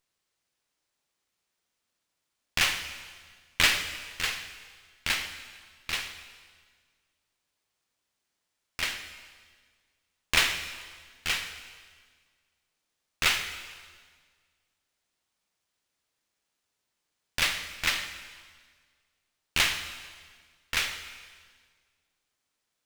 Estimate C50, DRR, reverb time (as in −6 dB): 9.0 dB, 8.0 dB, 1.6 s